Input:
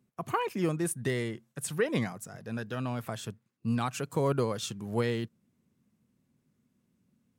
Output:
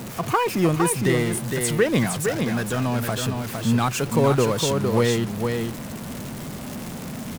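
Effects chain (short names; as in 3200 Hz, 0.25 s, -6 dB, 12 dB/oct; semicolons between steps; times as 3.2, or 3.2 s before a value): zero-crossing step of -35.5 dBFS; on a send: echo 0.46 s -5 dB; on the sum: gain +7.5 dB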